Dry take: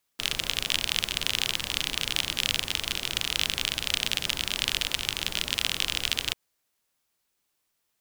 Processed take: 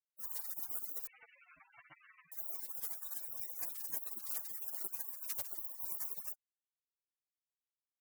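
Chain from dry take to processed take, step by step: wow and flutter 21 cents; spectral gate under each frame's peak -30 dB weak; sine folder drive 5 dB, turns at -25.5 dBFS; 1.07–2.32 inverted band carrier 2900 Hz; gain +6 dB

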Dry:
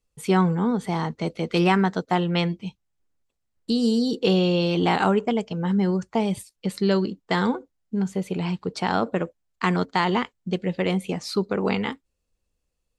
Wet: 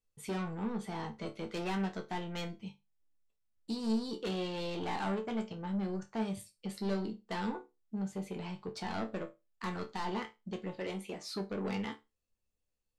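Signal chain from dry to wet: 10.77–11.36 HPF 230 Hz 12 dB/oct; soft clip -21.5 dBFS, distortion -10 dB; resonator bank D2 sus4, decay 0.23 s

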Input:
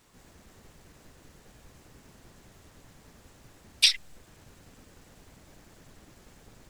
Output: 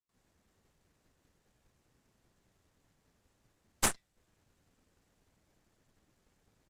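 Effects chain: gate with hold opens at -51 dBFS; flange 0.52 Hz, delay 8.3 ms, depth 3.4 ms, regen -74%; added harmonics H 3 -8 dB, 4 -19 dB, 8 -18 dB, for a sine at -7 dBFS; downsampling 32000 Hz

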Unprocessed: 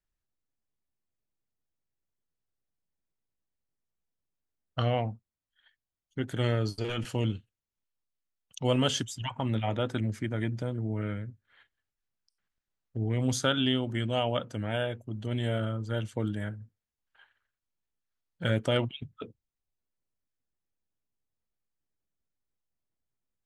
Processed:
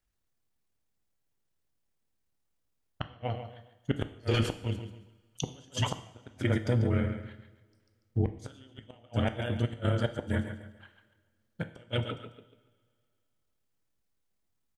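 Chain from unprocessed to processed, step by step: feedback echo 0.223 s, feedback 31%, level -9 dB; flipped gate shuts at -19 dBFS, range -35 dB; granular stretch 0.63×, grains 54 ms; two-slope reverb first 0.68 s, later 2.4 s, from -20 dB, DRR 9.5 dB; gain +6 dB

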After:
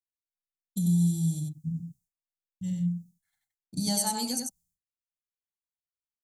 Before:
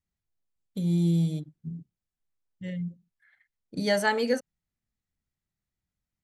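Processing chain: expander -57 dBFS; EQ curve 180 Hz 0 dB, 520 Hz -24 dB, 790 Hz -4 dB, 1800 Hz -24 dB, 7000 Hz +12 dB; compressor 2.5:1, threshold -31 dBFS, peak gain reduction 6.5 dB; echo 92 ms -4 dB; gain +4.5 dB

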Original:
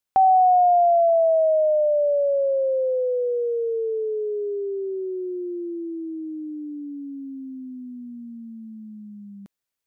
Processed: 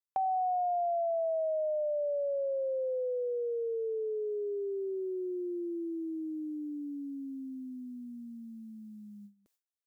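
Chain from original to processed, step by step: tone controls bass -13 dB, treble +6 dB; compressor 3:1, threshold -35 dBFS, peak gain reduction 15 dB; gate with hold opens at -45 dBFS

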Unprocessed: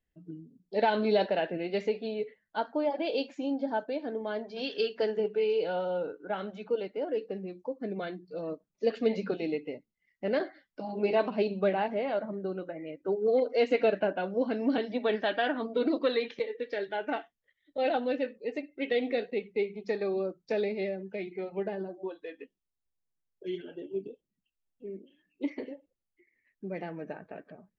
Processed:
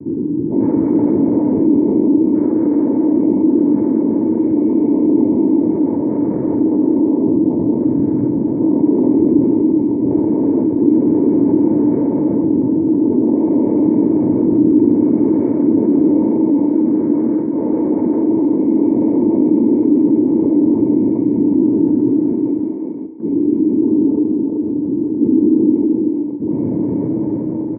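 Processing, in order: spectral dilation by 0.48 s; high shelf 3000 Hz -10 dB; sample leveller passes 3; noise vocoder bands 6; vocal tract filter u; air absorption 330 m; fixed phaser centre 1900 Hz, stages 4; echo 0.381 s -6.5 dB; reverb RT60 0.70 s, pre-delay 3 ms, DRR 13 dB; fast leveller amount 50%; gain +7 dB

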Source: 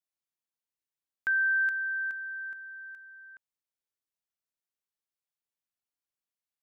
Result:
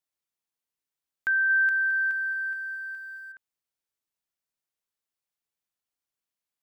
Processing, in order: 1.28–3.32 lo-fi delay 0.216 s, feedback 55%, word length 10-bit, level -12.5 dB; gain +2.5 dB

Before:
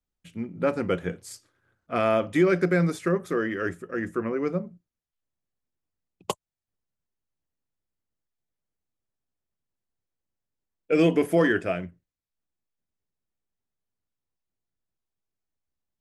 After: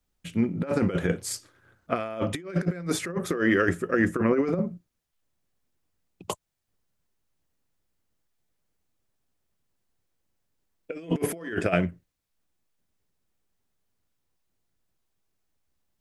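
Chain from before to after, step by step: negative-ratio compressor -29 dBFS, ratio -0.5; gain +4 dB

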